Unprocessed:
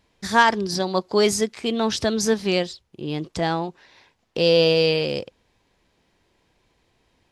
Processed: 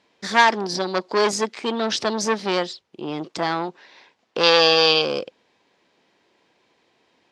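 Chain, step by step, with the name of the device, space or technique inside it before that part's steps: public-address speaker with an overloaded transformer (core saturation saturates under 2500 Hz; BPF 250–6000 Hz); 4.43–5.02 band shelf 3600 Hz +11 dB 1.1 oct; gain +4 dB

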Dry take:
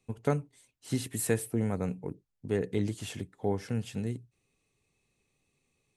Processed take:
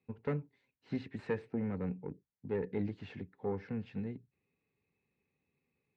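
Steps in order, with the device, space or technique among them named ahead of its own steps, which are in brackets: guitar amplifier (tube stage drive 21 dB, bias 0.55; tone controls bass +1 dB, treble -14 dB; speaker cabinet 95–4100 Hz, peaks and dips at 120 Hz -7 dB, 330 Hz -4 dB, 650 Hz -8 dB, 1200 Hz -6 dB, 3200 Hz -9 dB)

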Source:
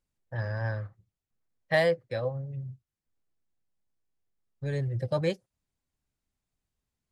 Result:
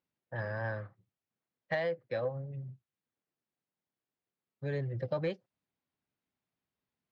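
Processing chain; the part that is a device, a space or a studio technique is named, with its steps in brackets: AM radio (BPF 160–3600 Hz; compressor 10:1, threshold -28 dBFS, peak gain reduction 9.5 dB; soft clip -20.5 dBFS, distortion -25 dB); LPF 6600 Hz

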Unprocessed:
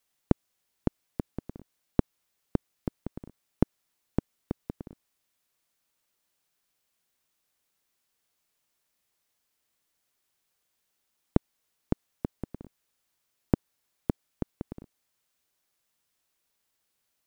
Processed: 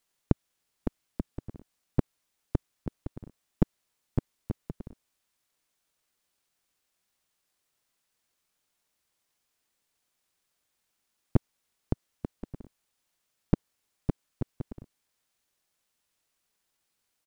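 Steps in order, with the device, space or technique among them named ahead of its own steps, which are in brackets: octave pedal (harmoniser -12 st -2 dB); gain -3 dB

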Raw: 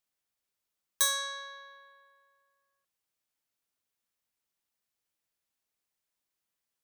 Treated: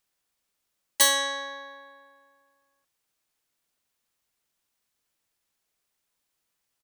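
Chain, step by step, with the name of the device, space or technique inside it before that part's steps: octave pedal (harmoniser -12 st -6 dB); gain +6 dB

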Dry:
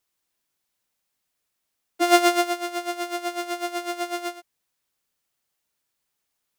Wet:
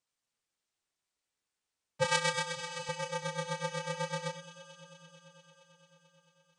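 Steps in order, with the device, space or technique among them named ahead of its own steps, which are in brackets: steep low-pass 9500 Hz 72 dB/oct; 2.04–2.89 HPF 1200 Hz 6 dB/oct; echo with dull and thin repeats by turns 0.112 s, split 2000 Hz, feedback 88%, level -13 dB; alien voice (ring modulator 190 Hz; flange 0.39 Hz, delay 5.9 ms, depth 8.7 ms, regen -46%)

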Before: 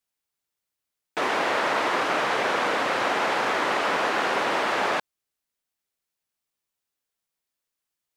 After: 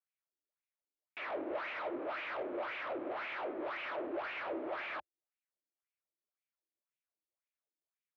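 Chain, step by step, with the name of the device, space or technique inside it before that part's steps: wah-wah guitar rig (wah 1.9 Hz 270–2600 Hz, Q 3; tube stage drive 34 dB, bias 0.3; speaker cabinet 77–3700 Hz, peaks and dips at 83 Hz -9 dB, 170 Hz -10 dB, 340 Hz +9 dB, 600 Hz +10 dB, 1300 Hz +3 dB, 2300 Hz +4 dB); gain -6 dB

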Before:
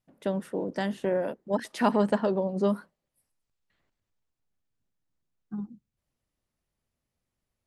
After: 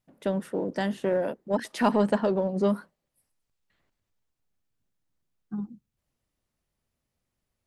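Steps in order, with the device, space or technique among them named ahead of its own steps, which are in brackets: parallel distortion (in parallel at -12 dB: hard clip -25.5 dBFS, distortion -7 dB)

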